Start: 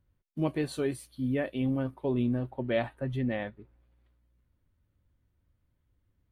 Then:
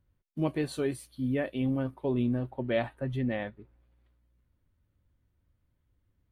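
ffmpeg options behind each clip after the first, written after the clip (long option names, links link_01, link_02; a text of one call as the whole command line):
ffmpeg -i in.wav -af anull out.wav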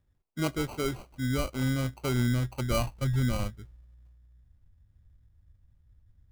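ffmpeg -i in.wav -af "acrusher=samples=25:mix=1:aa=0.000001,asubboost=boost=5.5:cutoff=140" out.wav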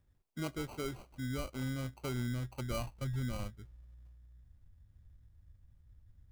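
ffmpeg -i in.wav -af "acompressor=threshold=-51dB:ratio=1.5" out.wav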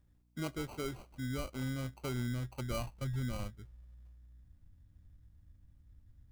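ffmpeg -i in.wav -af "aeval=exprs='val(0)+0.000316*(sin(2*PI*60*n/s)+sin(2*PI*2*60*n/s)/2+sin(2*PI*3*60*n/s)/3+sin(2*PI*4*60*n/s)/4+sin(2*PI*5*60*n/s)/5)':channel_layout=same" out.wav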